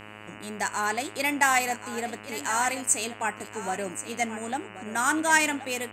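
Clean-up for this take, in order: de-hum 105.9 Hz, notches 28; inverse comb 1.079 s -12.5 dB

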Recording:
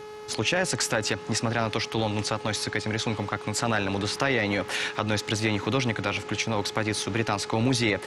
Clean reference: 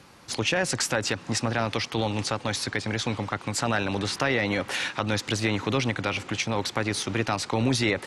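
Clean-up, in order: de-click; de-hum 424 Hz, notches 16

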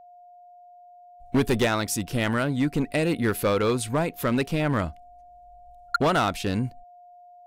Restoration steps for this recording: clip repair -16.5 dBFS; notch 710 Hz, Q 30

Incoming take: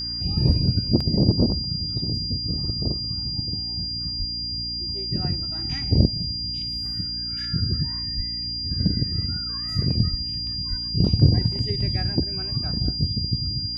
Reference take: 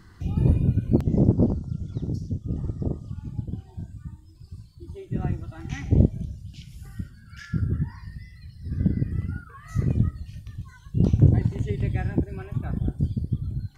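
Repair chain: de-hum 58.5 Hz, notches 5; notch 4800 Hz, Q 30; de-plosive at 4.18/8.16/10.1/10.69

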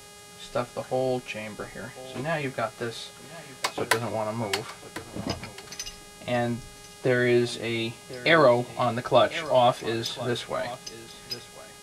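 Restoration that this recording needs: de-hum 411.9 Hz, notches 27; expander -39 dBFS, range -21 dB; inverse comb 1.047 s -16.5 dB

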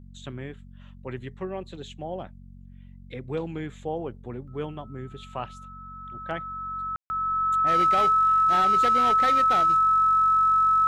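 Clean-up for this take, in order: clip repair -17 dBFS; de-hum 46.3 Hz, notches 5; notch 1300 Hz, Q 30; room tone fill 6.96–7.1

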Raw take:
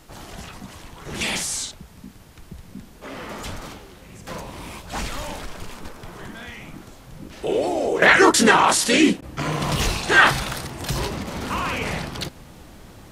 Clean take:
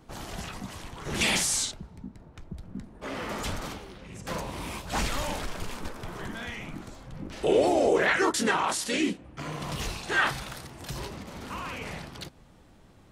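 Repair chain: interpolate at 9.21, 11 ms; expander -36 dBFS, range -21 dB; gain 0 dB, from 8.02 s -11 dB

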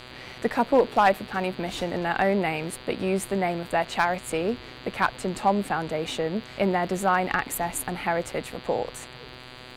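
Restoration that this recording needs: clip repair -11 dBFS; de-click; de-hum 125.8 Hz, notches 38; expander -35 dBFS, range -21 dB

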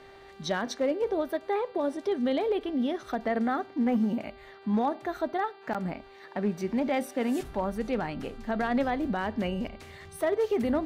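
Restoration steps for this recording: clip repair -20 dBFS; de-hum 392.8 Hz, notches 12

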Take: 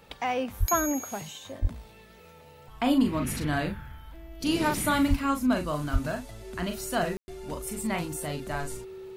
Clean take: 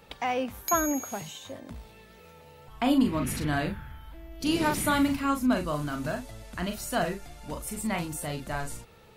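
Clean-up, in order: de-click; notch 380 Hz, Q 30; de-plosive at 0.59/1.61/5.09/5.92; room tone fill 7.17–7.28

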